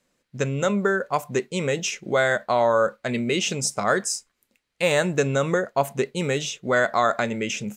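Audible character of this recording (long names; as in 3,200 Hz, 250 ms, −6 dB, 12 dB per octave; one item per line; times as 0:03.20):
background noise floor −76 dBFS
spectral slope −4.0 dB per octave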